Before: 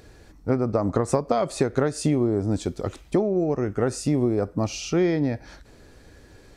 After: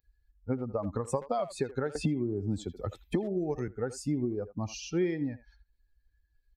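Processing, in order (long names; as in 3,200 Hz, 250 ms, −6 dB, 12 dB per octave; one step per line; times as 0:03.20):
spectral dynamics exaggerated over time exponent 2
far-end echo of a speakerphone 80 ms, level −14 dB
0:01.95–0:03.68: multiband upward and downward compressor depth 100%
level −5 dB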